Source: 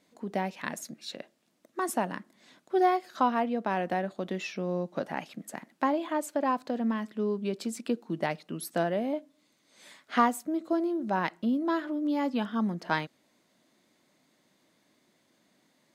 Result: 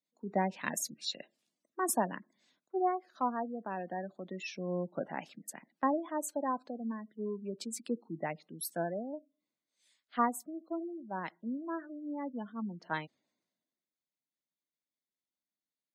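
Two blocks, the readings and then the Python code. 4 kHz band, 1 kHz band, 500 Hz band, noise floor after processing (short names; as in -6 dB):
-3.0 dB, -6.0 dB, -6.5 dB, under -85 dBFS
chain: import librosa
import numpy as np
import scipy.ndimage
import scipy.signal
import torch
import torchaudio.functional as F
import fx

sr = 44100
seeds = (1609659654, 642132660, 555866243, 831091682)

y = fx.high_shelf(x, sr, hz=4500.0, db=3.0)
y = fx.rider(y, sr, range_db=10, speed_s=2.0)
y = fx.spec_gate(y, sr, threshold_db=-20, keep='strong')
y = fx.band_widen(y, sr, depth_pct=70)
y = y * 10.0 ** (-8.5 / 20.0)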